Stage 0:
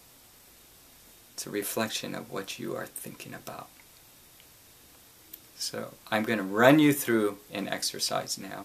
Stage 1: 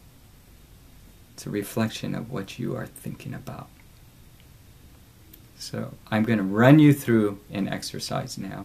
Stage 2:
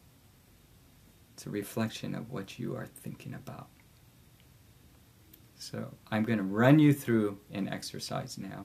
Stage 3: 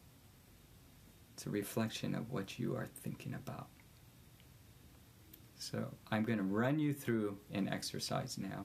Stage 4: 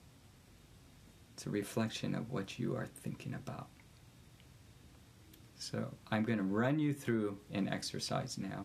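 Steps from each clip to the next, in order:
tone controls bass +15 dB, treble -5 dB
high-pass 65 Hz; trim -7 dB
compression 10:1, threshold -29 dBFS, peak gain reduction 13.5 dB; trim -2 dB
low-pass 10 kHz 12 dB/octave; trim +1.5 dB

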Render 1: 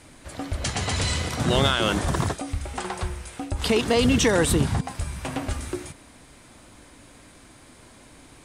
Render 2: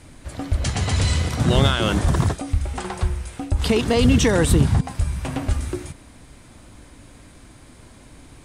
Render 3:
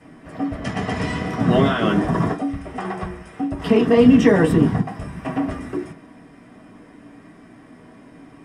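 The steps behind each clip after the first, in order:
bass shelf 190 Hz +9.5 dB
reverberation RT60 0.25 s, pre-delay 3 ms, DRR -6.5 dB; trim -12.5 dB

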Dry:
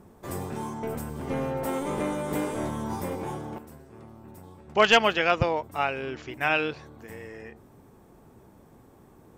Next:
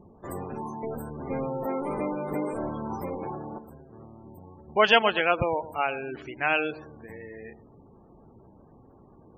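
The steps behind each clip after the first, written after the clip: feedback echo behind a low-pass 113 ms, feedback 34%, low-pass 1.2 kHz, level -14.5 dB; dynamic bell 100 Hz, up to -5 dB, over -46 dBFS, Q 0.73; spectral gate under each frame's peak -20 dB strong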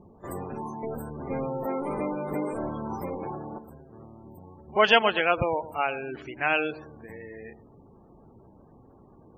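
pre-echo 39 ms -23 dB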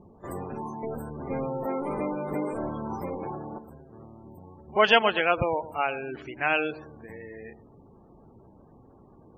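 treble shelf 8.9 kHz -6 dB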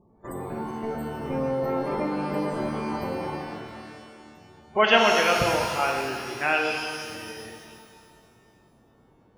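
gate -42 dBFS, range -8 dB; pitch-shifted reverb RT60 2.1 s, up +12 st, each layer -8 dB, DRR 1.5 dB

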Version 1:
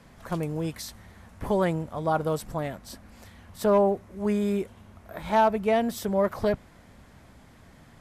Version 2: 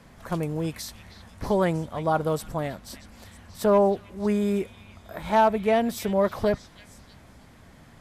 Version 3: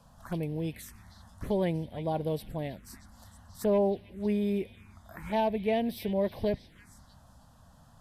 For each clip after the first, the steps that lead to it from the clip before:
repeats whose band climbs or falls 317 ms, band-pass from 2.9 kHz, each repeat 0.7 oct, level -8.5 dB; trim +1.5 dB
touch-sensitive phaser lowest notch 330 Hz, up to 1.3 kHz, full sweep at -26.5 dBFS; trim -4 dB

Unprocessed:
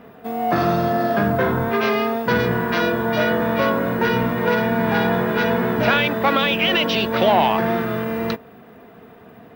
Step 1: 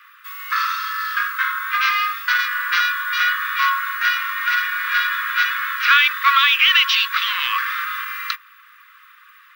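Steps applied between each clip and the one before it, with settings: Chebyshev high-pass 1.1 kHz, order 8; trim +7 dB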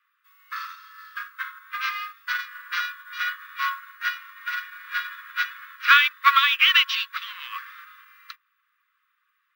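upward expansion 2.5:1, over -27 dBFS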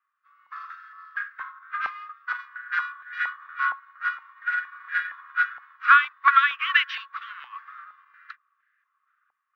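step-sequenced band-pass 4.3 Hz 810–1700 Hz; trim +5.5 dB

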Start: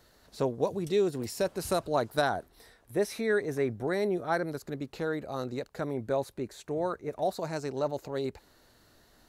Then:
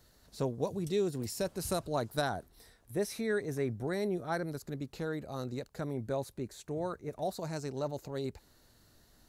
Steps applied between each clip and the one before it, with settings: tone controls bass +7 dB, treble +6 dB; trim -6 dB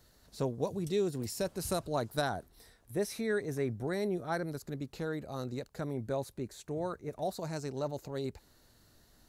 no audible change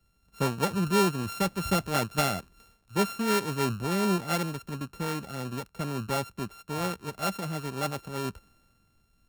sorted samples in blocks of 32 samples; peaking EQ 190 Hz +6.5 dB 0.43 oct; three bands expanded up and down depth 40%; trim +4.5 dB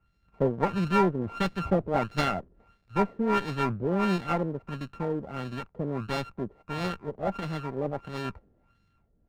LFO low-pass sine 1.5 Hz 470–2300 Hz; sliding maximum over 9 samples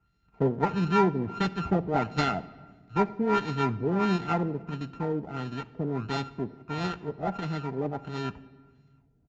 comb of notches 560 Hz; simulated room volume 1500 m³, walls mixed, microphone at 0.31 m; resampled via 16 kHz; trim +1 dB

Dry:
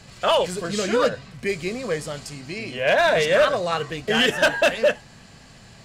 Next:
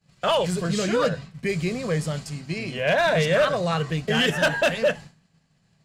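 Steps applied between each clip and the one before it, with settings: expander -33 dBFS; peaking EQ 160 Hz +13 dB 0.42 oct; in parallel at -2 dB: peak limiter -17.5 dBFS, peak gain reduction 8.5 dB; on the sum: trim -5.5 dB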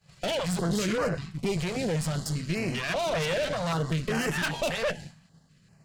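compression 2.5:1, threshold -29 dBFS, peak gain reduction 8.5 dB; valve stage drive 32 dB, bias 0.7; step-sequenced notch 5.1 Hz 260–3500 Hz; trim +9 dB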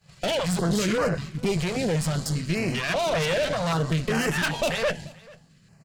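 delay 438 ms -23.5 dB; trim +3.5 dB

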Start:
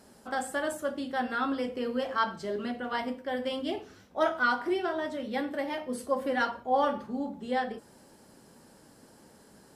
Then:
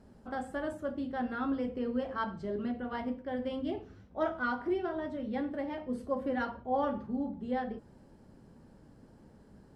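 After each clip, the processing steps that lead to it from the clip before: RIAA curve playback; trim -6.5 dB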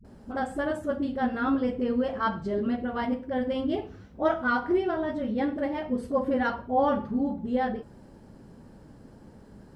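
phase dispersion highs, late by 47 ms, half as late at 320 Hz; trim +7 dB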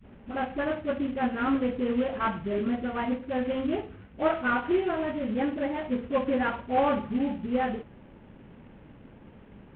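CVSD coder 16 kbps

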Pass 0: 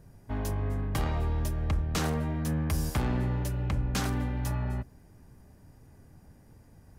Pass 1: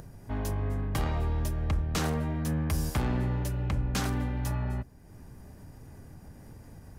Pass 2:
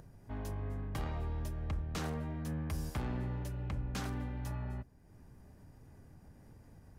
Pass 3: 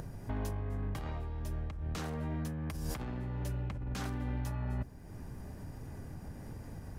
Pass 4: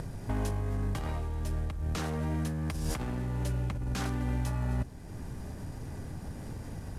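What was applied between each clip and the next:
upward compressor, threshold -39 dBFS
treble shelf 5.5 kHz -4.5 dB; trim -8.5 dB
compressor with a negative ratio -43 dBFS, ratio -1; trim +6.5 dB
CVSD coder 64 kbps; trim +5 dB

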